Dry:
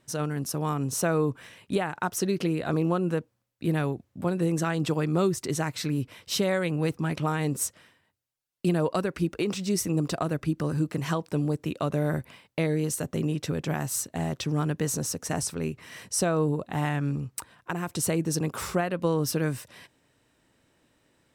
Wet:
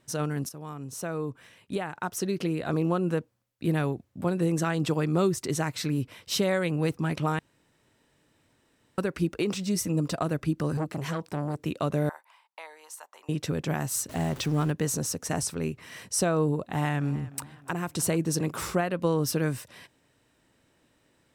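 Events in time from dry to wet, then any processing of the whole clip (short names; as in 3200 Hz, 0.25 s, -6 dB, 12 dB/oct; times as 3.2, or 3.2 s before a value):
0.49–3.15 fade in, from -13 dB
7.39–8.98 room tone
9.63–10.21 notch comb 380 Hz
10.77–11.58 core saturation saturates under 710 Hz
12.09–13.29 ladder high-pass 840 Hz, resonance 70%
14.09–14.71 zero-crossing step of -37.5 dBFS
16.67–18.7 warbling echo 0.302 s, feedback 43%, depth 75 cents, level -18.5 dB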